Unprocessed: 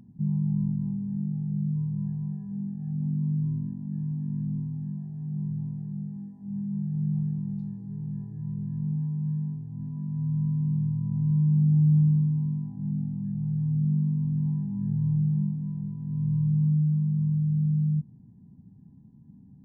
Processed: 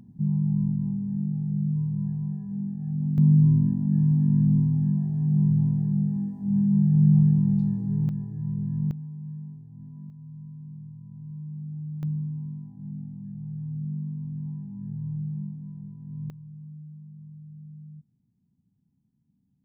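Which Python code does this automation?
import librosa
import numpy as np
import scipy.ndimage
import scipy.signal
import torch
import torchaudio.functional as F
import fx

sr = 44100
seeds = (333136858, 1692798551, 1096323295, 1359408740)

y = fx.gain(x, sr, db=fx.steps((0.0, 2.0), (3.18, 10.0), (8.09, 3.5), (8.91, -8.0), (10.1, -15.0), (12.03, -7.0), (16.3, -19.5)))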